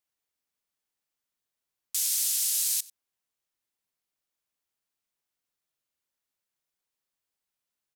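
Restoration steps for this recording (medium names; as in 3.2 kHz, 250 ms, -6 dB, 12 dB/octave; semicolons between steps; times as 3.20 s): inverse comb 93 ms -22 dB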